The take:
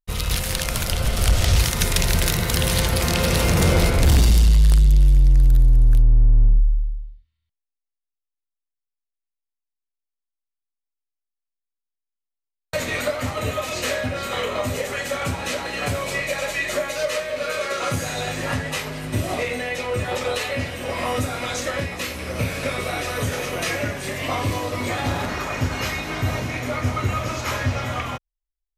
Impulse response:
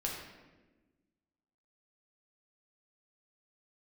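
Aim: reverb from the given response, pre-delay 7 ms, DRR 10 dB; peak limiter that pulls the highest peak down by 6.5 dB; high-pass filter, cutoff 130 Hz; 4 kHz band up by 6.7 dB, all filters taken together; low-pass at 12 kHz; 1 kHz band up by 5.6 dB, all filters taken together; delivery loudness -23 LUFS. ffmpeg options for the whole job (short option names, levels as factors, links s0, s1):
-filter_complex "[0:a]highpass=130,lowpass=12000,equalizer=f=1000:t=o:g=7,equalizer=f=4000:t=o:g=8,alimiter=limit=0.422:level=0:latency=1,asplit=2[s0][s1];[1:a]atrim=start_sample=2205,adelay=7[s2];[s1][s2]afir=irnorm=-1:irlink=0,volume=0.237[s3];[s0][s3]amix=inputs=2:normalize=0,volume=0.841"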